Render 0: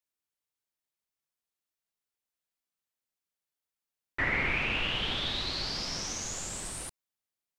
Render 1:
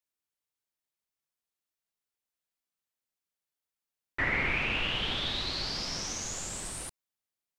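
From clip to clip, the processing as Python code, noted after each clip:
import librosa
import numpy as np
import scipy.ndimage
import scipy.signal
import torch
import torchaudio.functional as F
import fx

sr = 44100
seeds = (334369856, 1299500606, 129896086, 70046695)

y = x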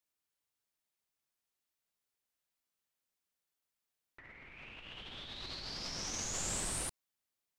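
y = fx.over_compress(x, sr, threshold_db=-38.0, ratio=-0.5)
y = y * 10.0 ** (-4.0 / 20.0)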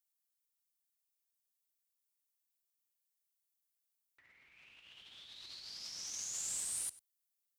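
y = scipy.signal.sosfilt(scipy.signal.butter(2, 56.0, 'highpass', fs=sr, output='sos'), x)
y = librosa.effects.preemphasis(y, coef=0.9, zi=[0.0])
y = y + 10.0 ** (-19.5 / 20.0) * np.pad(y, (int(97 * sr / 1000.0), 0))[:len(y)]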